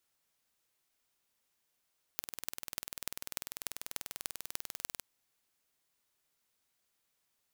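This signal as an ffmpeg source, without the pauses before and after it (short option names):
-f lavfi -i "aevalsrc='0.447*eq(mod(n,2172),0)*(0.5+0.5*eq(mod(n,13032),0))':d=2.84:s=44100"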